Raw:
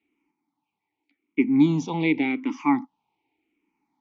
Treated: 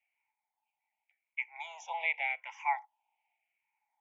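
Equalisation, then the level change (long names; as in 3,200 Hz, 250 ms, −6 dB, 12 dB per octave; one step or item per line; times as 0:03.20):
Butterworth high-pass 580 Hz 72 dB per octave
phaser with its sweep stopped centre 1,200 Hz, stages 6
−2.0 dB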